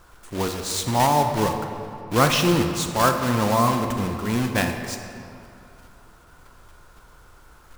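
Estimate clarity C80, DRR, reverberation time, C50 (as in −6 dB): 7.0 dB, 5.0 dB, 2.8 s, 6.0 dB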